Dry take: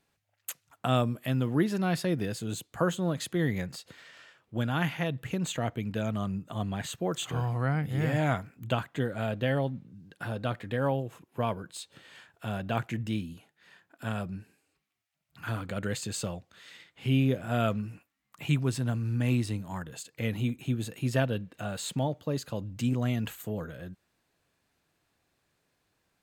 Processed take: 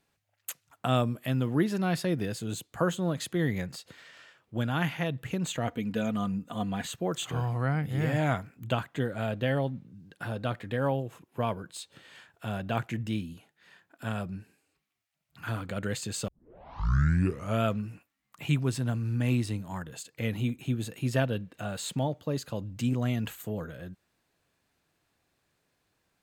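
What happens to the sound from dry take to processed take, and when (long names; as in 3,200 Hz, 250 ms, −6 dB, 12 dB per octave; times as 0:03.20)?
0:05.67–0:06.87: comb filter 4.1 ms
0:16.28: tape start 1.36 s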